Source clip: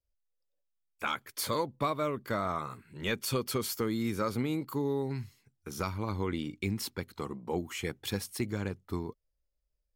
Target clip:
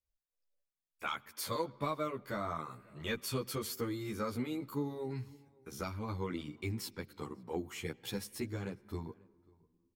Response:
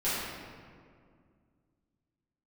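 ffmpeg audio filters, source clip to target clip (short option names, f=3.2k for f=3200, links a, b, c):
-filter_complex "[0:a]asplit=2[a][b];[b]adelay=542.3,volume=-25dB,highshelf=f=4k:g=-12.2[c];[a][c]amix=inputs=2:normalize=0,asplit=2[d][e];[1:a]atrim=start_sample=2205,lowpass=5.6k,adelay=91[f];[e][f]afir=irnorm=-1:irlink=0,volume=-33.5dB[g];[d][g]amix=inputs=2:normalize=0,asplit=2[h][i];[i]adelay=11.6,afreqshift=1.7[j];[h][j]amix=inputs=2:normalize=1,volume=-2.5dB"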